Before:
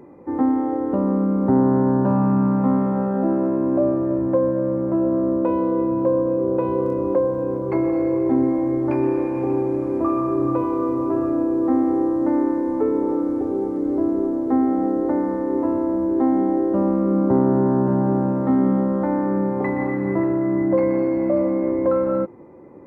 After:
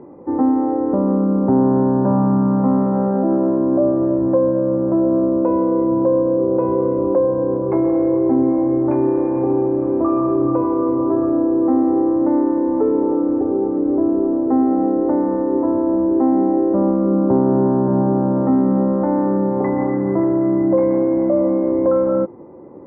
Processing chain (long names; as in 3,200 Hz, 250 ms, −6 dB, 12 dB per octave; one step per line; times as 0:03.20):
low-pass filter 1,100 Hz 12 dB per octave
low-shelf EQ 180 Hz −4.5 dB
in parallel at 0 dB: brickwall limiter −17 dBFS, peak gain reduction 8 dB